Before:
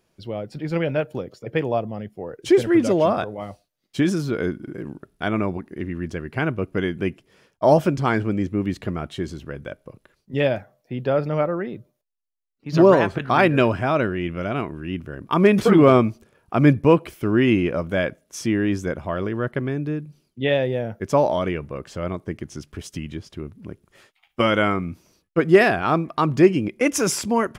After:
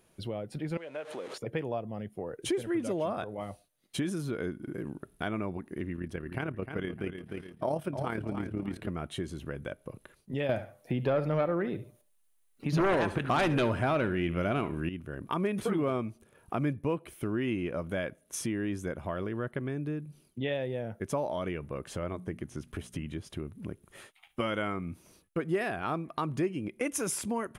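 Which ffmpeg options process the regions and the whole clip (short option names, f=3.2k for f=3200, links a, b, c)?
-filter_complex "[0:a]asettb=1/sr,asplit=3[a][b][c];[a]atrim=end=0.774[d];[b]atrim=start=0.77:end=1.38,asetpts=PTS-STARTPTS,afade=t=in:d=0.004:c=qsin,afade=t=out:st=0.606:d=0.004:c=qsin,aeval=exprs='val(0)+0.5*0.0178*sgn(val(0))':c=same,acompressor=threshold=-32dB:ratio=2.5:attack=3.2:release=140:knee=1:detection=peak,highpass=410,lowpass=5.5k[e];[c]atrim=start=1.376[f];[d][e]acrossfade=d=0.004:c1=hsin:c2=qsin[g];[g][f]acrossfade=d=0.004:c1=qsin:c2=hsin,asettb=1/sr,asplit=3[h][i][j];[h]atrim=end=5.964[k];[i]atrim=start=5.96:end=8.88,asetpts=PTS-STARTPTS,afade=t=in:d=0.004:c=qsin,afade=t=out:st=2.916:d=0.004:c=qsin,equalizer=f=6.8k:t=o:w=0.24:g=-8,aecho=1:1:302|604|906:0.316|0.0885|0.0248,atrim=end_sample=128772,tremolo=f=36:d=0.571[l];[j]atrim=start=8.876[m];[k][l]acrossfade=d=0.004:c1=hsin:c2=qsin[n];[n][m]acrossfade=d=0.004:c1=qsin:c2=hsin,asettb=1/sr,asplit=3[o][p][q];[o]atrim=end=10.494[r];[p]atrim=start=10.49:end=14.89,asetpts=PTS-STARTPTS,afade=t=in:d=0.004:c=qsin,afade=t=out:st=4.396:d=0.004:c=qsin,aeval=exprs='0.708*sin(PI/2*2.51*val(0)/0.708)':c=same,aecho=1:1:70|140:0.158|0.0396,atrim=end_sample=194040[s];[q]atrim=start=14.886[t];[r][s]acrossfade=d=0.004:c1=hsin:c2=qsin[u];[u][t]acrossfade=d=0.004:c1=qsin:c2=hsin,asettb=1/sr,asplit=3[v][w][x];[v]atrim=end=21.994[y];[w]atrim=start=21.99:end=23.17,asetpts=PTS-STARTPTS,afade=t=in:d=0.004:c=qsin,afade=t=out:st=1.176:d=0.004:c=qsin,acrossover=split=2700[z][aa];[aa]acompressor=threshold=-49dB:ratio=4:attack=1:release=60[ab];[z][ab]amix=inputs=2:normalize=0,bandreject=f=60:t=h:w=6,bandreject=f=120:t=h:w=6,bandreject=f=180:t=h:w=6,bandreject=f=240:t=h:w=6[ac];[x]atrim=start=23.166[ad];[y][ac]acrossfade=d=0.004:c1=hsin:c2=qsin[ae];[ae][ad]acrossfade=d=0.004:c1=qsin:c2=hsin,superequalizer=14b=0.631:16b=2.51,acompressor=threshold=-38dB:ratio=2.5,volume=1.5dB"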